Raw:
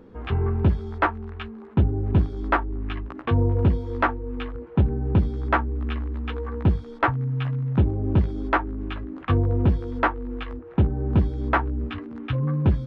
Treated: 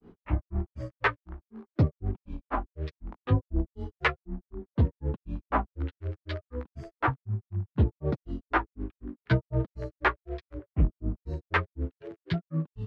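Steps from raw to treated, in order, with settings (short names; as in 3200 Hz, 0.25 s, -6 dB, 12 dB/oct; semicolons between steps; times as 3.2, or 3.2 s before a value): grains 0.166 s, grains 4/s, spray 12 ms, pitch spread up and down by 7 st; gain -1.5 dB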